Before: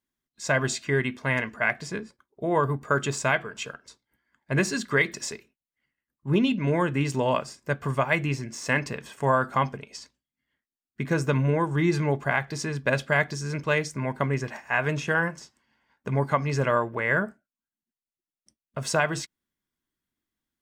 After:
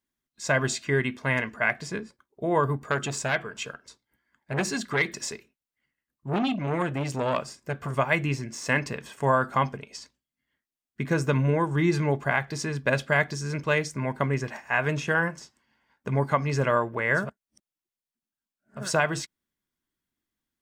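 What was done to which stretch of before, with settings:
2.77–7.94 core saturation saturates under 1200 Hz
17.26–18.8 reverse, crossfade 0.24 s

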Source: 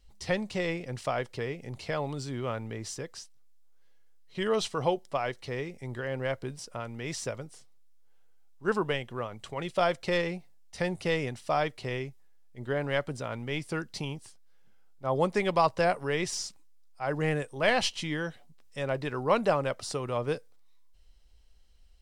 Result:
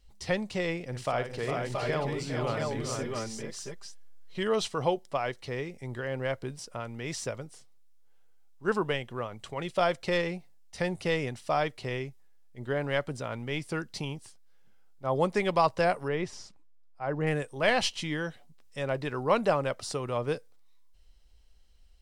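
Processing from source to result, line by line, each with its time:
0.85–4.43 tapped delay 57/406/448/675/680 ms -8.5/-8/-5/-6/-5.5 dB
16.08–17.27 LPF 1400 Hz 6 dB/oct

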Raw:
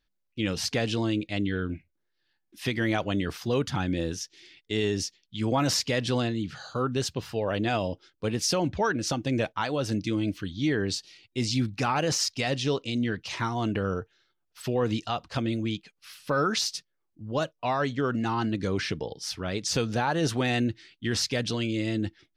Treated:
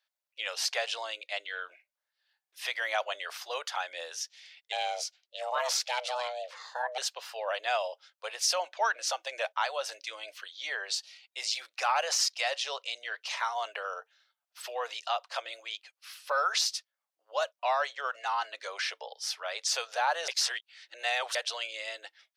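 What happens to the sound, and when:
4.72–6.98 ring modulator 370 Hz
20.28–21.35 reverse
whole clip: steep high-pass 570 Hz 48 dB/oct

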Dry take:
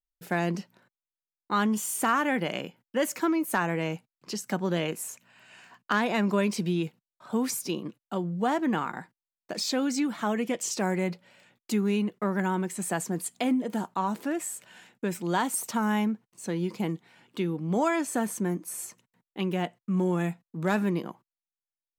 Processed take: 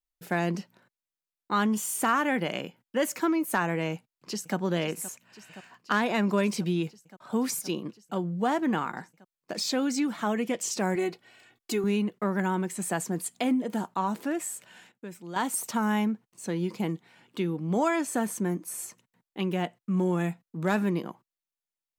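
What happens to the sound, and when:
3.93–4.56 echo throw 0.52 s, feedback 85%, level -16 dB
10.95–11.84 comb 2.7 ms, depth 76%
14.55–15.73 dip -11 dB, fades 0.37 s logarithmic

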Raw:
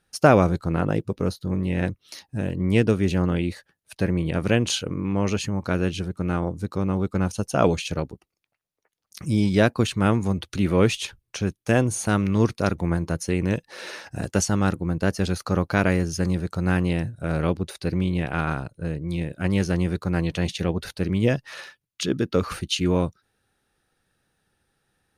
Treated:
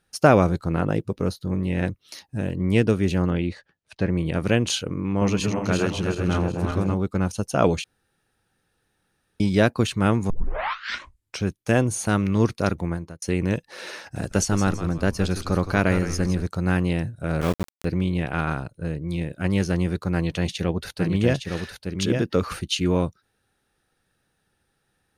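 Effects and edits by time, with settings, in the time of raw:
3.3–4.13 air absorption 92 m
5.03–6.94 regenerating reverse delay 0.187 s, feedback 63%, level -3 dB
7.84–9.4 room tone
10.3 tape start 1.13 s
12.75–13.22 fade out
13.99–16.47 frequency-shifting echo 0.165 s, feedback 34%, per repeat -96 Hz, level -10 dB
17.41–17.85 sample gate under -26 dBFS
20.13–22.35 echo 0.861 s -5 dB

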